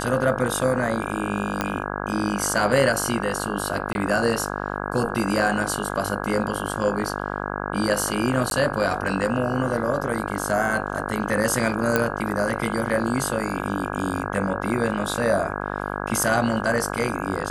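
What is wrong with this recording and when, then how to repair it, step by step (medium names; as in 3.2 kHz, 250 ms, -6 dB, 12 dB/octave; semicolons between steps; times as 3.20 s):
buzz 50 Hz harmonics 33 -29 dBFS
1.61 s: pop -8 dBFS
3.93–3.95 s: dropout 21 ms
8.50–8.51 s: dropout 12 ms
11.96 s: pop -6 dBFS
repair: de-click; de-hum 50 Hz, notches 33; interpolate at 3.93 s, 21 ms; interpolate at 8.50 s, 12 ms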